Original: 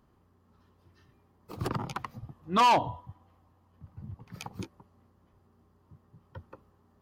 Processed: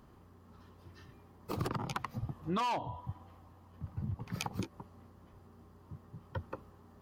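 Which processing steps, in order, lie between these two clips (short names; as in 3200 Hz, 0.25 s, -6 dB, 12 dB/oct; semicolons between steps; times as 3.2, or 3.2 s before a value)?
compressor 12:1, threshold -39 dBFS, peak gain reduction 19.5 dB; gain +7 dB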